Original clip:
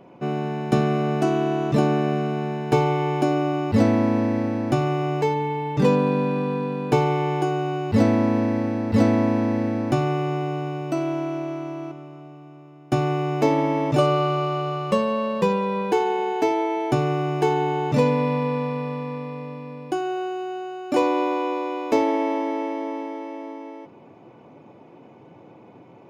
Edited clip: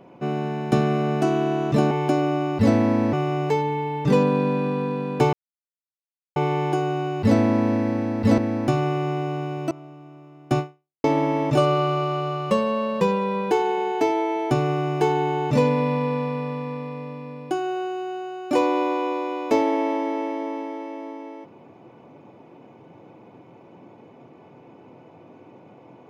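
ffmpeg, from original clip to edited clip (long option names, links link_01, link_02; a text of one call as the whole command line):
ffmpeg -i in.wav -filter_complex "[0:a]asplit=7[link_01][link_02][link_03][link_04][link_05][link_06][link_07];[link_01]atrim=end=1.912[link_08];[link_02]atrim=start=3.038:end=4.262[link_09];[link_03]atrim=start=4.848:end=7.05,asetpts=PTS-STARTPTS,afade=type=out:start_time=2.198:duration=0.004:curve=hsin,apad=pad_dur=1.03[link_10];[link_04]atrim=start=7.05:end=9.072,asetpts=PTS-STARTPTS,afade=type=in:duration=0.004:curve=hsin[link_11];[link_05]atrim=start=9.618:end=10.952[link_12];[link_06]atrim=start=12.118:end=13.45,asetpts=PTS-STARTPTS,afade=type=out:start_time=0.882:duration=0.45:curve=exp[link_13];[link_07]atrim=start=13.45,asetpts=PTS-STARTPTS,afade=type=in:duration=0.004:curve=hsin[link_14];[link_08][link_09]acrossfade=duration=0.004:curve1=hsin:curve2=hsin[link_15];[link_10][link_11]concat=n=2:v=0:a=1[link_16];[link_15][link_16]acrossfade=duration=0.004:curve1=hsin:curve2=hsin[link_17];[link_17][link_12]acrossfade=duration=0.004:curve1=hsin:curve2=hsin[link_18];[link_13][link_14]concat=n=2:v=0:a=1[link_19];[link_18][link_19]acrossfade=duration=0.004:curve1=hsin:curve2=hsin" out.wav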